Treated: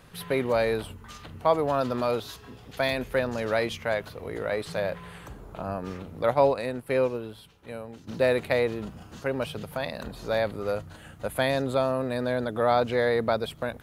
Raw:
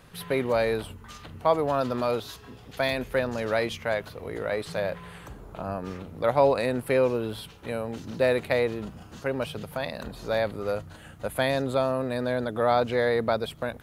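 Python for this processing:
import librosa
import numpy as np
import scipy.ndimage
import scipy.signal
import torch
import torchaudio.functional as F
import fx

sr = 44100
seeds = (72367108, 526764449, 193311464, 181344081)

y = fx.upward_expand(x, sr, threshold_db=-37.0, expansion=1.5, at=(6.33, 8.07), fade=0.02)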